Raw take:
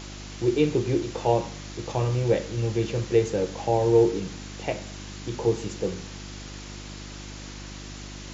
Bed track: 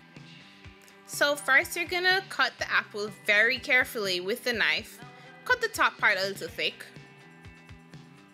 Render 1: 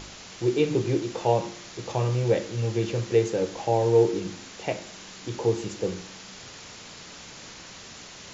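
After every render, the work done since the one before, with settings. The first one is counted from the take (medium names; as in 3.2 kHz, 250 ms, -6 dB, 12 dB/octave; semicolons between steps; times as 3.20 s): de-hum 50 Hz, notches 7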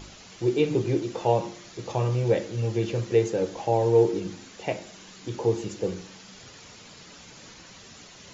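noise reduction 7 dB, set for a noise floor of -44 dBFS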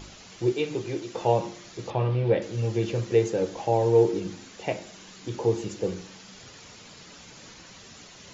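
0.52–1.15 s: bass shelf 470 Hz -9.5 dB; 1.90–2.42 s: low-pass 3.8 kHz 24 dB/octave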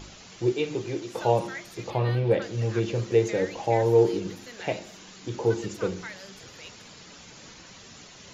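add bed track -17.5 dB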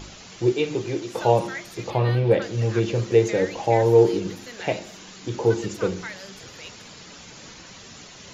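trim +4 dB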